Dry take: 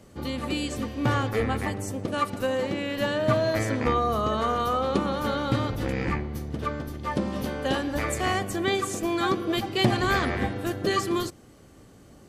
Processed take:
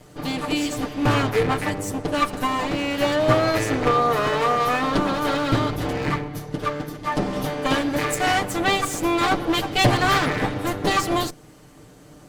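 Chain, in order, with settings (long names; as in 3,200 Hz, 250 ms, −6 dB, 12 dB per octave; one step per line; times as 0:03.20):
lower of the sound and its delayed copy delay 6.7 ms
level +6 dB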